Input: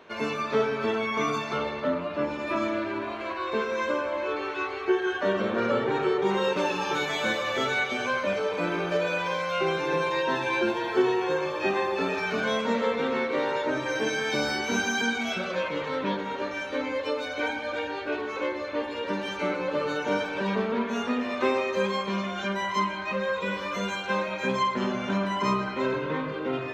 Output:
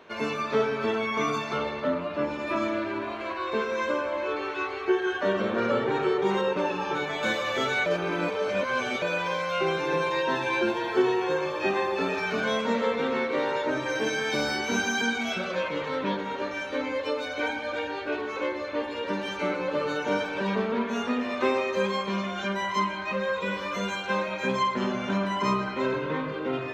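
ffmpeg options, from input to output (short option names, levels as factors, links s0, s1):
-filter_complex "[0:a]asettb=1/sr,asplit=3[s0][s1][s2];[s0]atrim=end=6.414[s3];[s1]atrim=start=6.41:end=7.23,asetpts=PTS-STARTPTS,afade=t=in:d=0.004:c=qsin,afade=t=out:st=0.816:d=0.004:c=qsin,highshelf=f=3600:g=-12[s4];[s2]atrim=start=7.226[s5];[s3][s4]acrossfade=d=0.004:c1=hsin:c2=qsin[s6];[s6][s5]acrossfade=d=0.004:c1=qsin:c2=hsin,asettb=1/sr,asplit=3[s7][s8][s9];[s7]atrim=end=13.704[s10];[s8]atrim=start=13.7:end=14.68,asetpts=PTS-STARTPTS,afade=t=in:d=0.004:c=qsin,afade=t=out:st=0.976:d=0.004:c=qsin,asoftclip=type=hard:threshold=0.106[s11];[s9]atrim=start=14.676[s12];[s10][s11]acrossfade=d=0.004:c1=hsin:c2=qsin[s13];[s13][s12]acrossfade=d=0.004:c1=qsin:c2=hsin,asplit=3[s14][s15][s16];[s14]atrim=end=7.862[s17];[s15]atrim=start=7.858:end=9.022,asetpts=PTS-STARTPTS,areverse[s18];[s16]atrim=start=9.018[s19];[s17][s18]acrossfade=d=0.004:c1=hsin:c2=hsin[s20];[s20][s19]acrossfade=d=0.004:c1=hsin:c2=hsin"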